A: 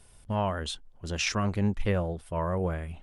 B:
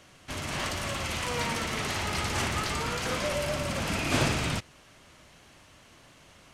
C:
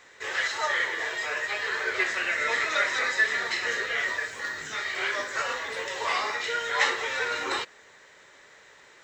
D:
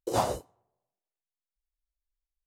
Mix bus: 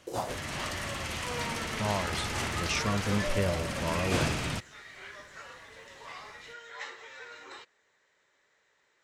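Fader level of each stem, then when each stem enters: −3.0, −3.5, −17.5, −7.0 decibels; 1.50, 0.00, 0.00, 0.00 seconds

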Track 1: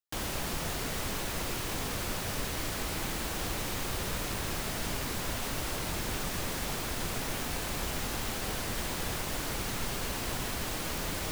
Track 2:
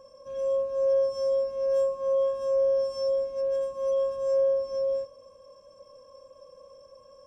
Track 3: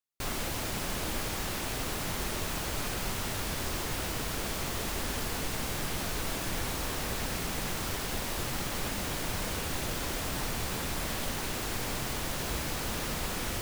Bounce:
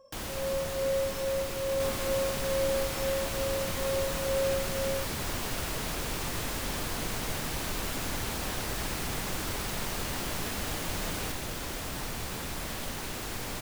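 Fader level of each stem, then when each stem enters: −2.5, −6.0, −2.5 decibels; 0.00, 0.00, 1.60 seconds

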